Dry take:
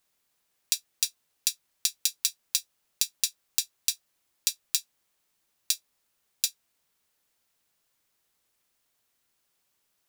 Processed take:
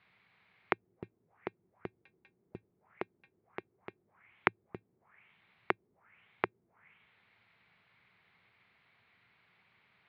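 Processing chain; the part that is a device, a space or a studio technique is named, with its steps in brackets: 3.1–4.64 LPF 6200 Hz 12 dB/oct; envelope filter bass rig (envelope low-pass 360–4400 Hz down, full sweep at -36.5 dBFS; speaker cabinet 74–2300 Hz, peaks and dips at 110 Hz +9 dB, 180 Hz +6 dB, 300 Hz -8 dB, 550 Hz -6 dB, 2200 Hz +8 dB); gain +11.5 dB

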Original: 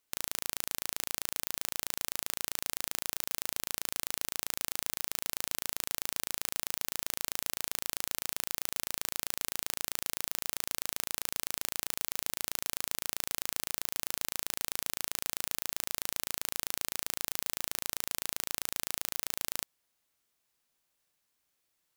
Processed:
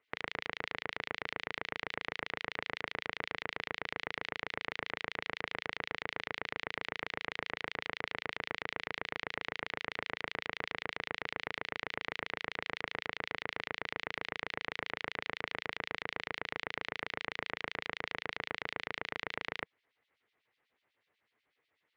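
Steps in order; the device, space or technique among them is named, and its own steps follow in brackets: guitar amplifier with harmonic tremolo (harmonic tremolo 8.1 Hz, depth 100%, crossover 2300 Hz; soft clip -22.5 dBFS, distortion -5 dB; speaker cabinet 89–3500 Hz, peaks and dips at 180 Hz -7 dB, 450 Hz +6 dB, 2000 Hz +8 dB); gain +8 dB

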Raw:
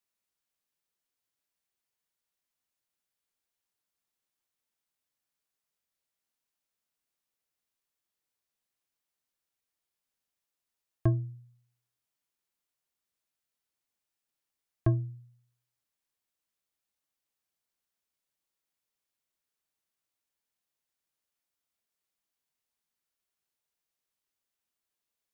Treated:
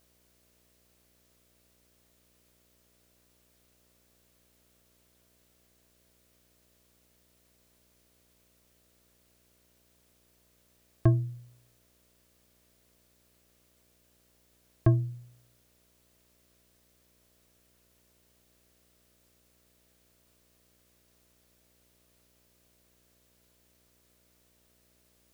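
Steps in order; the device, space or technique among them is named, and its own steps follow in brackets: video cassette with head-switching buzz (buzz 60 Hz, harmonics 11, -75 dBFS -3 dB/oct; white noise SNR 29 dB); gain +3.5 dB

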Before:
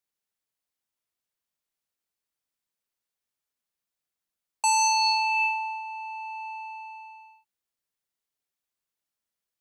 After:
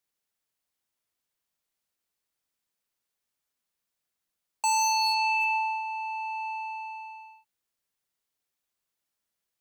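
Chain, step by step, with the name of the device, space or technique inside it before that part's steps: clipper into limiter (hard clip -18.5 dBFS, distortion -21 dB; limiter -23.5 dBFS, peak gain reduction 5 dB); gain +3 dB

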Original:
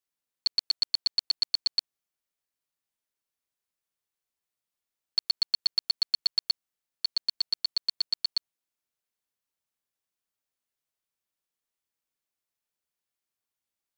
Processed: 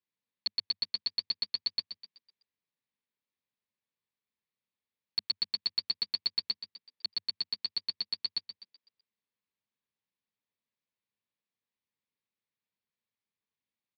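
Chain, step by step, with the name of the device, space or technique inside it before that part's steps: frequency-shifting delay pedal into a guitar cabinet (frequency-shifting echo 0.126 s, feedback 44%, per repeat +77 Hz, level -11 dB; speaker cabinet 90–4000 Hz, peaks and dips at 100 Hz +5 dB, 210 Hz +6 dB, 340 Hz -4 dB, 700 Hz -10 dB, 1400 Hz -9 dB, 3000 Hz -4 dB)

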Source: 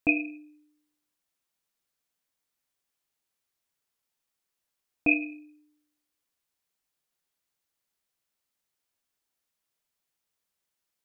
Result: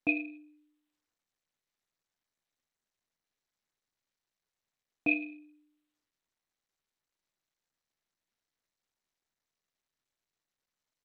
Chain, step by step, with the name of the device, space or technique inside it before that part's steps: Bluetooth headset (HPF 100 Hz 12 dB/oct; downsampling 16000 Hz; gain -5 dB; SBC 64 kbps 32000 Hz)

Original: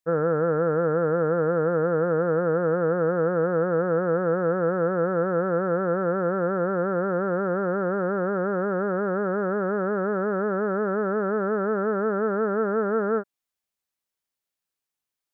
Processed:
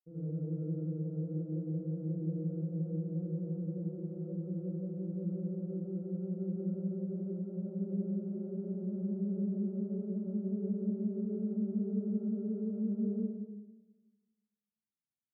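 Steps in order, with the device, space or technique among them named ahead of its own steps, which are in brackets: HPF 1200 Hz 6 dB/oct; club heard from the street (limiter -26.5 dBFS, peak gain reduction 6 dB; LPF 230 Hz 24 dB/oct; reverb RT60 1.1 s, pre-delay 43 ms, DRR -8.5 dB); gain +4.5 dB

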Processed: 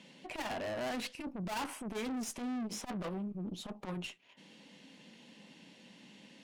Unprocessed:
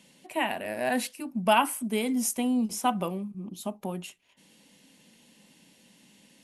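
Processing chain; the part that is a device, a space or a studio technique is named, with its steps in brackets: valve radio (BPF 130–4400 Hz; tube stage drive 39 dB, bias 0.4; core saturation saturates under 160 Hz); gain +4.5 dB

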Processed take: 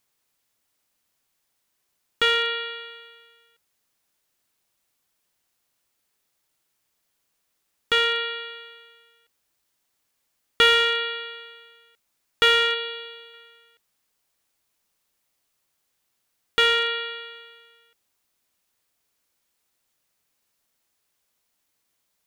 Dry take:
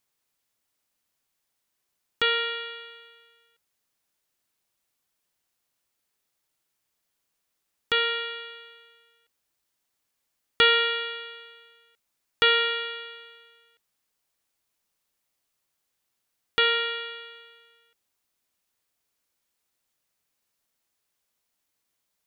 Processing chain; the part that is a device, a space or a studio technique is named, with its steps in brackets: 12.74–13.34 bell 1600 Hz -6 dB 1.4 oct; parallel distortion (in parallel at -4 dB: hard clip -22 dBFS, distortion -8 dB)

